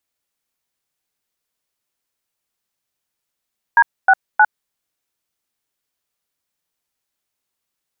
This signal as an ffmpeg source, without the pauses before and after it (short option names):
-f lavfi -i "aevalsrc='0.335*clip(min(mod(t,0.312),0.054-mod(t,0.312))/0.002,0,1)*(eq(floor(t/0.312),0)*(sin(2*PI*941*mod(t,0.312))+sin(2*PI*1633*mod(t,0.312)))+eq(floor(t/0.312),1)*(sin(2*PI*770*mod(t,0.312))+sin(2*PI*1477*mod(t,0.312)))+eq(floor(t/0.312),2)*(sin(2*PI*852*mod(t,0.312))+sin(2*PI*1477*mod(t,0.312))))':d=0.936:s=44100"